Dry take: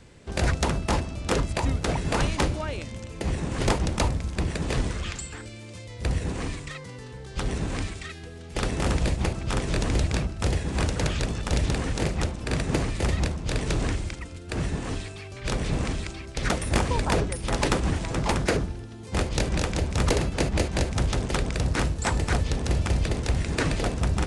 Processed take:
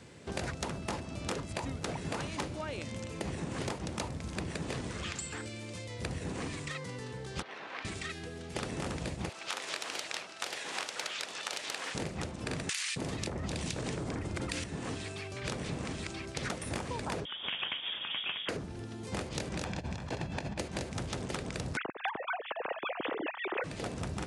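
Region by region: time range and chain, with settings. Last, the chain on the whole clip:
7.42–7.85 HPF 930 Hz + air absorption 290 m
9.29–11.95 HPF 720 Hz + bell 3600 Hz +5 dB 2.1 oct + Doppler distortion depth 0.22 ms
12.69–14.64 bands offset in time highs, lows 0.27 s, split 1900 Hz + fast leveller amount 100%
17.25–18.49 HPF 150 Hz + inverted band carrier 3500 Hz
19.64–20.59 comb 1.2 ms, depth 43% + negative-ratio compressor -25 dBFS, ratio -0.5 + air absorption 76 m
21.77–23.64 sine-wave speech + hard clip -9 dBFS
whole clip: HPF 110 Hz 12 dB/oct; compressor 6:1, threshold -34 dBFS

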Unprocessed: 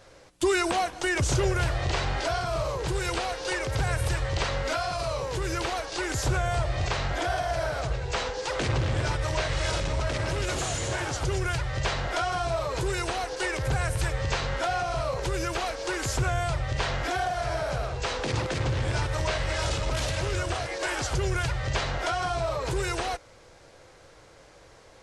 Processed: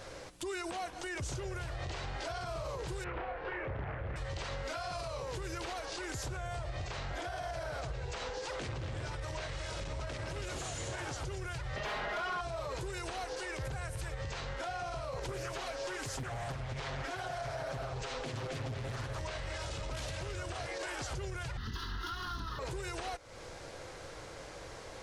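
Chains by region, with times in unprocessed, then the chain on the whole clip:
3.04–4.16 LPF 2200 Hz 24 dB/oct + doubler 31 ms -2 dB + Doppler distortion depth 0.74 ms
11.76–12.41 bell 7800 Hz -8.5 dB 0.58 oct + comb 4.8 ms, depth 77% + overdrive pedal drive 21 dB, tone 1700 Hz, clips at -13 dBFS
15.28–19.19 comb 7.5 ms, depth 85% + Doppler distortion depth 0.94 ms
21.57–22.59 minimum comb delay 3 ms + bell 670 Hz -8.5 dB 0.65 oct + fixed phaser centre 2300 Hz, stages 6
whole clip: compressor 5:1, threshold -42 dBFS; limiter -36 dBFS; gain +5.5 dB

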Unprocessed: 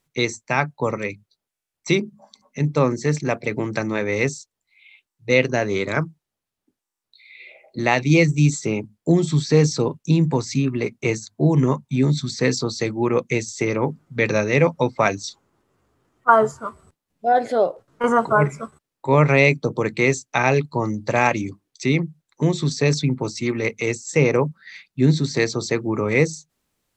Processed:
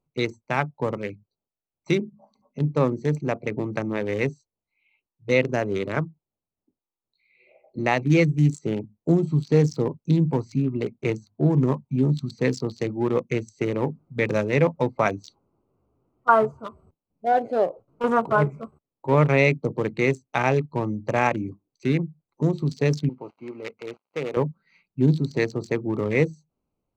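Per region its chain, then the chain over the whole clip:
23.09–24.37 switching dead time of 0.12 ms + HPF 940 Hz 6 dB/oct + air absorption 180 m
whole clip: Wiener smoothing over 25 samples; dynamic EQ 4400 Hz, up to -4 dB, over -36 dBFS, Q 0.73; gain -2.5 dB

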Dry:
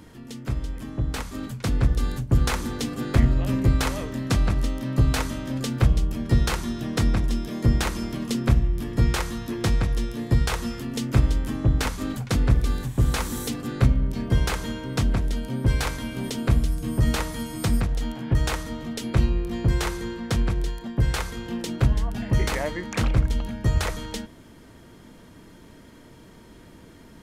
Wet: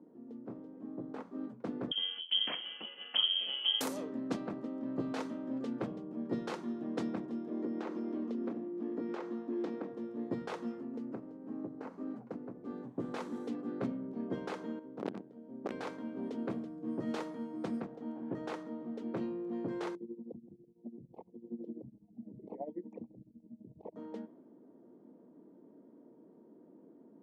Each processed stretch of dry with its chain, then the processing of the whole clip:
1.91–3.81 inverted band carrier 3200 Hz + low shelf 160 Hz +7.5 dB
7.5–9.93 resonant high-pass 270 Hz, resonance Q 1.6 + bell 10000 Hz -13.5 dB 0.45 oct + compressor 5:1, threshold -25 dBFS
10.77–12.65 CVSD 64 kbps + bell 3500 Hz -7.5 dB 0.21 oct + compressor 2:1, threshold -30 dBFS
14.79–15.72 gate -22 dBFS, range -8 dB + wrapped overs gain 16 dB + core saturation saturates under 190 Hz
19.95–23.96 formant sharpening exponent 2 + tremolo 12 Hz, depth 86% + Chebyshev band-stop 830–2500 Hz
whole clip: HPF 240 Hz 24 dB/oct; low-pass opened by the level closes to 620 Hz, open at -18.5 dBFS; bell 2200 Hz -12.5 dB 2.7 oct; gain -4 dB

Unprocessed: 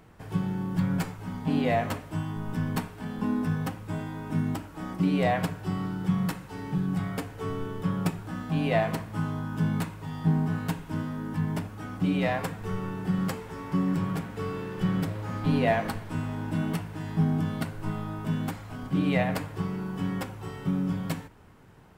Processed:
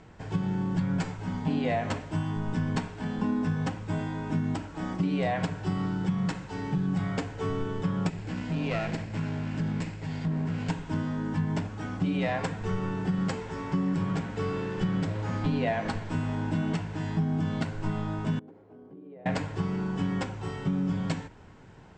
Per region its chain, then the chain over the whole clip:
8.09–10.7 minimum comb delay 0.4 ms + compressor 2:1, threshold -32 dBFS
18.39–19.26 band-pass 400 Hz, Q 4.1 + compressor 5:1, threshold -48 dBFS
whole clip: steep low-pass 8000 Hz 72 dB/oct; notch 1200 Hz, Q 10; compressor, threshold -27 dBFS; gain +3 dB

